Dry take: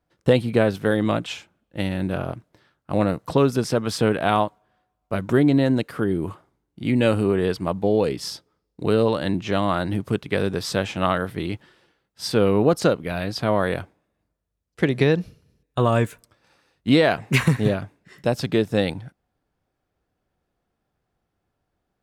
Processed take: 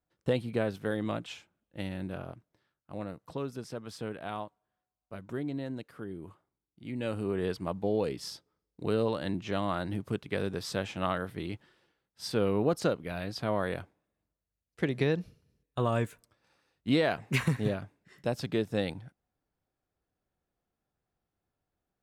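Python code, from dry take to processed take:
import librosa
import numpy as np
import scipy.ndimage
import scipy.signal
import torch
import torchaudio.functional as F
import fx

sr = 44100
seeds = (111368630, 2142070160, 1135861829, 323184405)

y = fx.gain(x, sr, db=fx.line((1.95, -11.5), (2.93, -18.0), (6.86, -18.0), (7.44, -9.5)))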